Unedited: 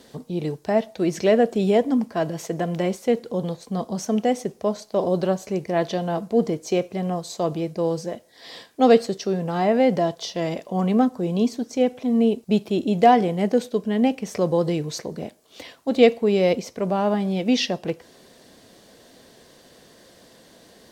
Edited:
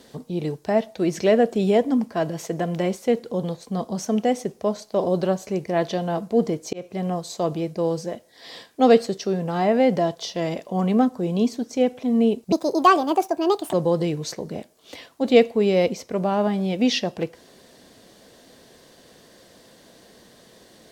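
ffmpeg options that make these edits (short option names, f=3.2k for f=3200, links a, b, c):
-filter_complex "[0:a]asplit=4[a][b][c][d];[a]atrim=end=6.73,asetpts=PTS-STARTPTS,afade=t=out:st=6.726:d=0.004:c=hsin[e];[b]atrim=start=6.73:end=12.524,asetpts=PTS-STARTPTS,afade=t=in:d=0.35:c=qsin[f];[c]atrim=start=12.52:end=14.4,asetpts=PTS-STARTPTS,asetrate=68355,aresample=44100,atrim=end_sample=53489,asetpts=PTS-STARTPTS[g];[d]atrim=start=14.396[h];[e][f]concat=n=2:v=0:a=1[i];[i][g]acrossfade=d=0.004:c1=hsin:c2=hsin[j];[j][h]acrossfade=d=0.004:c1=hsin:c2=hsin"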